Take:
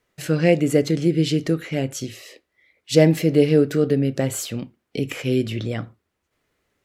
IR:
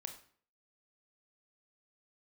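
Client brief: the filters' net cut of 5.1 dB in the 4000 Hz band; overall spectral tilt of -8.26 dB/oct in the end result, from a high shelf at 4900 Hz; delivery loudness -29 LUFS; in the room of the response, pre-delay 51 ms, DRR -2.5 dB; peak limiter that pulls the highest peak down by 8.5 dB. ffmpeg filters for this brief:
-filter_complex "[0:a]equalizer=f=4k:t=o:g=-4.5,highshelf=f=4.9k:g=-5.5,alimiter=limit=-10dB:level=0:latency=1,asplit=2[a][b];[1:a]atrim=start_sample=2205,adelay=51[c];[b][c]afir=irnorm=-1:irlink=0,volume=6dB[d];[a][d]amix=inputs=2:normalize=0,volume=-10.5dB"

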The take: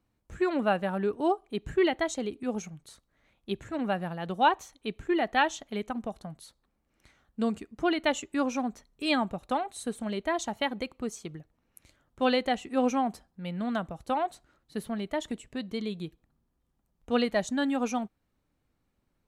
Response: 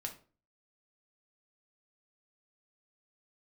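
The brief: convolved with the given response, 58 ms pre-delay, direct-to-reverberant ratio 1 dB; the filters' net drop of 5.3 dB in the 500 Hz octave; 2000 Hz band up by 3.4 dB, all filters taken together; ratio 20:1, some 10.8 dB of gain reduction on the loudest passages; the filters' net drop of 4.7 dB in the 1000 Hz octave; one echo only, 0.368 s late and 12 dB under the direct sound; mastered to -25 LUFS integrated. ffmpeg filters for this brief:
-filter_complex "[0:a]equalizer=f=500:t=o:g=-6,equalizer=f=1k:t=o:g=-5,equalizer=f=2k:t=o:g=6,acompressor=threshold=-31dB:ratio=20,aecho=1:1:368:0.251,asplit=2[a][b];[1:a]atrim=start_sample=2205,adelay=58[c];[b][c]afir=irnorm=-1:irlink=0,volume=0.5dB[d];[a][d]amix=inputs=2:normalize=0,volume=10dB"

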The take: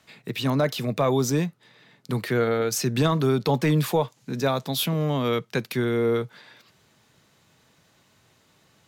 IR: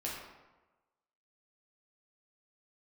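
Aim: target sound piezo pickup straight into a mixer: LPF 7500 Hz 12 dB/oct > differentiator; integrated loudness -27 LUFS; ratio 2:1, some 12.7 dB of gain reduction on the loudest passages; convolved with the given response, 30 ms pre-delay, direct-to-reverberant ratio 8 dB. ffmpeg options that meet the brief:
-filter_complex "[0:a]acompressor=threshold=-42dB:ratio=2,asplit=2[a][b];[1:a]atrim=start_sample=2205,adelay=30[c];[b][c]afir=irnorm=-1:irlink=0,volume=-10.5dB[d];[a][d]amix=inputs=2:normalize=0,lowpass=7.5k,aderivative,volume=22.5dB"

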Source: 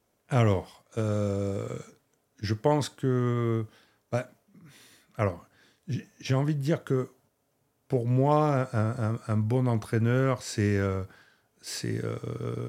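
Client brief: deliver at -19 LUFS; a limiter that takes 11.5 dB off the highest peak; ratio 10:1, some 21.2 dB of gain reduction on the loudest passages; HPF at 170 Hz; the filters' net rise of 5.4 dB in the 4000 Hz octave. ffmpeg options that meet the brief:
-af "highpass=170,equalizer=f=4k:t=o:g=7,acompressor=threshold=-40dB:ratio=10,volume=28.5dB,alimiter=limit=-6.5dB:level=0:latency=1"

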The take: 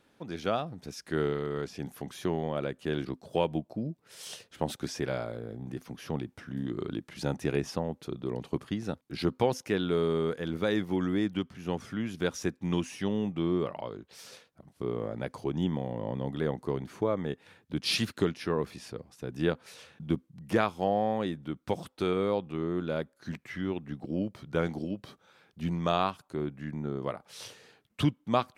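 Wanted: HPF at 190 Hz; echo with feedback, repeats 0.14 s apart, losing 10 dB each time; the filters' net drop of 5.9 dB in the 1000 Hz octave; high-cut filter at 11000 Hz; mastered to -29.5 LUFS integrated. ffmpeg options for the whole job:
-af "highpass=190,lowpass=11k,equalizer=f=1k:t=o:g=-8.5,aecho=1:1:140|280|420|560:0.316|0.101|0.0324|0.0104,volume=5dB"

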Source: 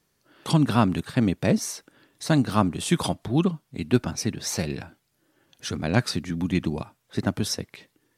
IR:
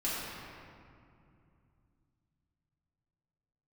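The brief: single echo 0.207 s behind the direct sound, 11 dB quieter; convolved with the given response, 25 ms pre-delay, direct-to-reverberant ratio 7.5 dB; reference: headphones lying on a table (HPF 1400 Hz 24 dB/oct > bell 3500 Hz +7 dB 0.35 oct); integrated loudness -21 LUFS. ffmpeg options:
-filter_complex "[0:a]aecho=1:1:207:0.282,asplit=2[a][b];[1:a]atrim=start_sample=2205,adelay=25[c];[b][c]afir=irnorm=-1:irlink=0,volume=-14.5dB[d];[a][d]amix=inputs=2:normalize=0,highpass=f=1.4k:w=0.5412,highpass=f=1.4k:w=1.3066,equalizer=f=3.5k:t=o:w=0.35:g=7,volume=11dB"

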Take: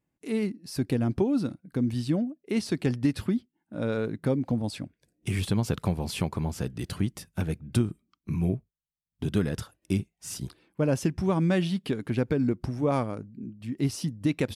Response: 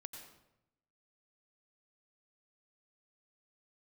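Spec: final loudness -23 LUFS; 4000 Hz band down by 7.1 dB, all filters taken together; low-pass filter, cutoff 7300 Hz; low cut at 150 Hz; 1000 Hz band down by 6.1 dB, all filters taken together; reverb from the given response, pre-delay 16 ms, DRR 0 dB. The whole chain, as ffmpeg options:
-filter_complex "[0:a]highpass=150,lowpass=7.3k,equalizer=f=1k:t=o:g=-8,equalizer=f=4k:t=o:g=-8.5,asplit=2[a][b];[1:a]atrim=start_sample=2205,adelay=16[c];[b][c]afir=irnorm=-1:irlink=0,volume=4.5dB[d];[a][d]amix=inputs=2:normalize=0,volume=5dB"

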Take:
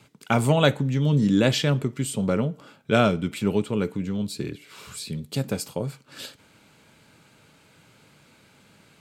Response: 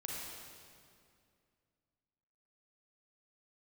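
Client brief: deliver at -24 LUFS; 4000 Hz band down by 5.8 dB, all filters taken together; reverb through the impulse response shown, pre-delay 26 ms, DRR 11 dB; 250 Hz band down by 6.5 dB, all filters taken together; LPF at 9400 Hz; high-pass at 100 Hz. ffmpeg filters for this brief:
-filter_complex "[0:a]highpass=100,lowpass=9.4k,equalizer=f=250:t=o:g=-9,equalizer=f=4k:t=o:g=-7.5,asplit=2[a][b];[1:a]atrim=start_sample=2205,adelay=26[c];[b][c]afir=irnorm=-1:irlink=0,volume=-11dB[d];[a][d]amix=inputs=2:normalize=0,volume=3.5dB"

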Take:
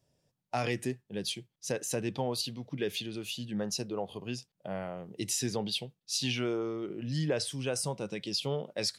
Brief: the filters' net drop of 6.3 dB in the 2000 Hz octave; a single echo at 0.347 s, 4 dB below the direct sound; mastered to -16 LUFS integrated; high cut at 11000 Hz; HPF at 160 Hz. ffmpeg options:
-af "highpass=160,lowpass=11k,equalizer=f=2k:t=o:g=-9,aecho=1:1:347:0.631,volume=18.5dB"

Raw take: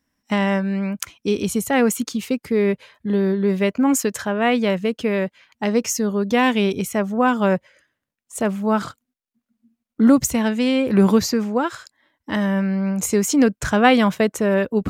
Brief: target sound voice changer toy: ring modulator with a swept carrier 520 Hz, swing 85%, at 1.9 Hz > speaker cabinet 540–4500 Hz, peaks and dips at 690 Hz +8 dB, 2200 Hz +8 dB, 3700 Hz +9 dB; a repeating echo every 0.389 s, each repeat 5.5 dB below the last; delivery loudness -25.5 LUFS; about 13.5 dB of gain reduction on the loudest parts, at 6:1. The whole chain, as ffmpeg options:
-af "acompressor=threshold=-25dB:ratio=6,aecho=1:1:389|778|1167|1556|1945|2334|2723:0.531|0.281|0.149|0.079|0.0419|0.0222|0.0118,aeval=exprs='val(0)*sin(2*PI*520*n/s+520*0.85/1.9*sin(2*PI*1.9*n/s))':c=same,highpass=540,equalizer=f=690:t=q:w=4:g=8,equalizer=f=2.2k:t=q:w=4:g=8,equalizer=f=3.7k:t=q:w=4:g=9,lowpass=f=4.5k:w=0.5412,lowpass=f=4.5k:w=1.3066,volume=4.5dB"

